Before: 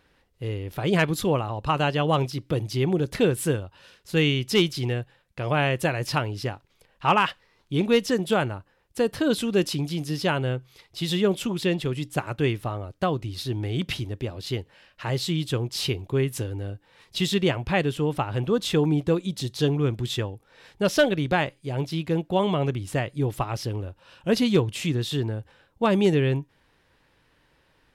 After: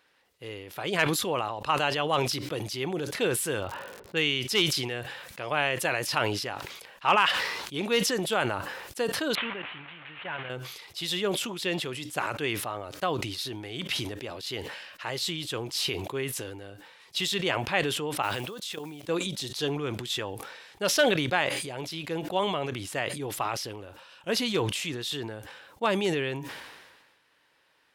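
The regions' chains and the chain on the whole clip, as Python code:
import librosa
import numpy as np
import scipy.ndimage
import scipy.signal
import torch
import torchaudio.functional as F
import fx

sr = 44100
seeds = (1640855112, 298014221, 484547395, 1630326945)

y = fx.env_lowpass(x, sr, base_hz=450.0, full_db=-19.0, at=(3.6, 4.26), fade=0.02)
y = fx.dmg_crackle(y, sr, seeds[0], per_s=95.0, level_db=-56.0, at=(3.6, 4.26), fade=0.02)
y = fx.chain(y, sr, fx.delta_mod(bps=16000, step_db=-28.5),
    fx.peak_eq(hz=330.0, db=-9.5, octaves=2.5),
    fx.level_steps(step_db=10), at=(9.35, 10.5))
y = fx.chain(y, sr, fx.block_float(bits=7),
    fx.high_shelf(hz=2100.0, db=7.0),
    fx.level_steps(step_db=18), at=(18.22, 19.09))
y = fx.highpass(y, sr, hz=850.0, slope=6)
y = fx.sustainer(y, sr, db_per_s=40.0)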